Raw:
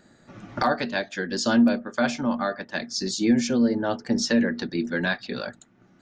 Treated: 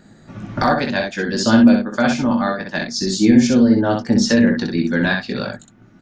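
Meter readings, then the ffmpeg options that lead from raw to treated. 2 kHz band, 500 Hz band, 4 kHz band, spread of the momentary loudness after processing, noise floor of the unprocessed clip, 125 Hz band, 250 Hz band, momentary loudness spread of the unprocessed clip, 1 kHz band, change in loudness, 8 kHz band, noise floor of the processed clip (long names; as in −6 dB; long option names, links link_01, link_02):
+6.5 dB, +6.5 dB, +6.0 dB, 11 LU, −58 dBFS, +11.5 dB, +9.0 dB, 9 LU, +6.5 dB, +8.0 dB, +5.5 dB, −48 dBFS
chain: -filter_complex "[0:a]bass=frequency=250:gain=7,treble=frequency=4000:gain=-1,asplit=2[link_01][link_02];[link_02]aecho=0:1:19|63:0.447|0.596[link_03];[link_01][link_03]amix=inputs=2:normalize=0,volume=4.5dB"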